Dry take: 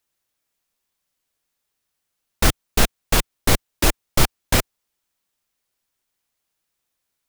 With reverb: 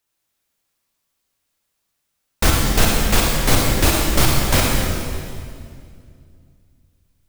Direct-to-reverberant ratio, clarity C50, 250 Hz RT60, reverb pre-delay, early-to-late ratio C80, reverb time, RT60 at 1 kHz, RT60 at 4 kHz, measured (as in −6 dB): −2.0 dB, −1.0 dB, 3.0 s, 36 ms, 0.5 dB, 2.3 s, 2.1 s, 2.0 s